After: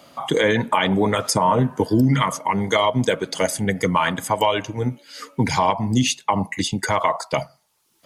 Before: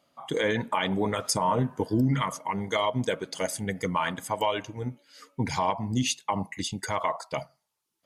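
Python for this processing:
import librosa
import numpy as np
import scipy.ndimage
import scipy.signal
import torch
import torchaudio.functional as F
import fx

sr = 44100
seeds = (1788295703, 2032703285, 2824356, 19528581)

y = fx.band_squash(x, sr, depth_pct=40)
y = y * librosa.db_to_amplitude(8.0)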